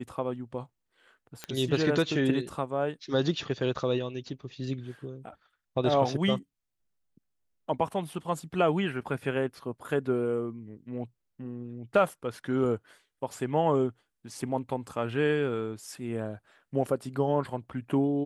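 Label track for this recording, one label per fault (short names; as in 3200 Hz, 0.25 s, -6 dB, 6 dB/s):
1.440000	1.440000	pop -18 dBFS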